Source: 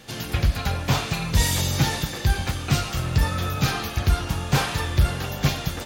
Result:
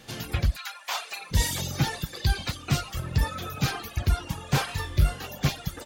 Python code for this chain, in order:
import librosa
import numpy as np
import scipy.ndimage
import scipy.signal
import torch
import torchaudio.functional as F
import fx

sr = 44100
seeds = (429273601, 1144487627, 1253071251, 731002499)

y = fx.dereverb_blind(x, sr, rt60_s=1.6)
y = fx.highpass(y, sr, hz=fx.line((0.55, 1400.0), (1.3, 360.0)), slope=24, at=(0.55, 1.3), fade=0.02)
y = fx.peak_eq(y, sr, hz=4200.0, db=9.0, octaves=0.77, at=(2.13, 2.57))
y = fx.room_flutter(y, sr, wall_m=3.6, rt60_s=0.21, at=(4.67, 5.26), fade=0.02)
y = y * 10.0 ** (-3.0 / 20.0)